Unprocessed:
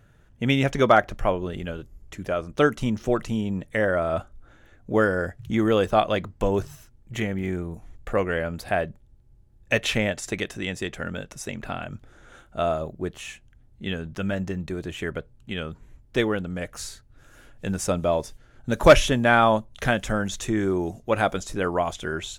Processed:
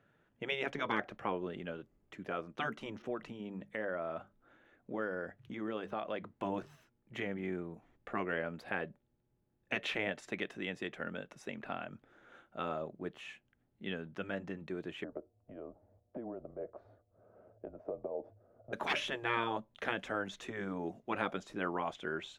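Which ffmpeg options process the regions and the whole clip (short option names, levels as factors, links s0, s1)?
-filter_complex "[0:a]asettb=1/sr,asplit=3[s0][s1][s2];[s0]atrim=end=3.024[s3];[s1]atrim=start=3.02:end=6.25,asetpts=PTS-STARTPTS,afade=t=in:d=0.004:c=qsin,afade=t=out:st=3.226:d=0.004:c=qsin,bandreject=f=50:t=h:w=6,bandreject=f=100:t=h:w=6,bandreject=f=150:t=h:w=6,bandreject=f=200:t=h:w=6,acompressor=threshold=0.0316:ratio=2:attack=3.2:release=140:knee=1:detection=peak,adynamicequalizer=threshold=0.00447:dfrequency=3900:dqfactor=0.7:tfrequency=3900:tqfactor=0.7:attack=5:release=100:ratio=0.375:range=2.5:mode=cutabove:tftype=highshelf[s4];[s2]atrim=start=6.246[s5];[s3][s4]acrossfade=d=0.004:c1=hsin:c2=qsin[s6];[s6][s5]acrossfade=d=0.004:c1=qsin:c2=hsin,asettb=1/sr,asplit=3[s7][s8][s9];[s7]atrim=end=15.044[s10];[s8]atrim=start=15.04:end=18.73,asetpts=PTS-STARTPTS,afade=t=in:d=0.004:c=qsin,afade=t=out:st=3.686:d=0.004:c=qsin,afreqshift=-120,acompressor=threshold=0.0282:ratio=10:attack=3.2:release=140:knee=1:detection=peak,lowpass=f=620:t=q:w=7.5[s11];[s9]atrim=start=18.726[s12];[s10][s11]acrossfade=d=0.004:c1=hsin:c2=qsin[s13];[s13][s12]acrossfade=d=0.004:c1=qsin:c2=hsin,afftfilt=real='re*lt(hypot(re,im),0.398)':imag='im*lt(hypot(re,im),0.398)':win_size=1024:overlap=0.75,acrossover=split=160 3700:gain=0.0794 1 0.141[s14][s15][s16];[s14][s15][s16]amix=inputs=3:normalize=0,volume=0.398"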